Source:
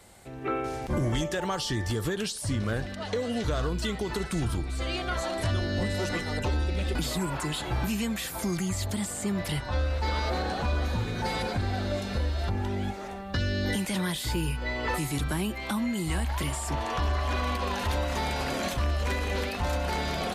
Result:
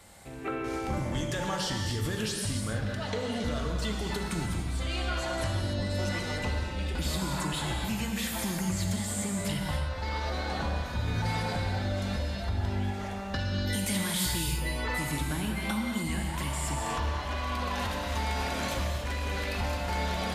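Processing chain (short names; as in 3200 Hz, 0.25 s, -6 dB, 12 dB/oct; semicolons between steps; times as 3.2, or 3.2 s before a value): bell 400 Hz -4.5 dB 0.76 oct; compressor, threshold -30 dBFS, peak gain reduction 6.5 dB; 13.67–14.81 high shelf 5600 Hz +9 dB; non-linear reverb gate 0.32 s flat, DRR 1 dB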